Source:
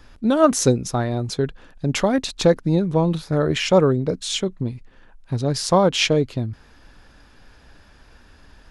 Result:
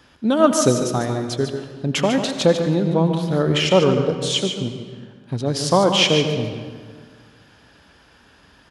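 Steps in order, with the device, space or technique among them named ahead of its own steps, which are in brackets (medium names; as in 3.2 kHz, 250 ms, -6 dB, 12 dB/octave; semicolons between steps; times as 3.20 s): PA in a hall (high-pass 110 Hz 12 dB/octave; peaking EQ 3.1 kHz +7 dB 0.2 oct; delay 146 ms -8.5 dB; reverberation RT60 1.8 s, pre-delay 72 ms, DRR 8 dB)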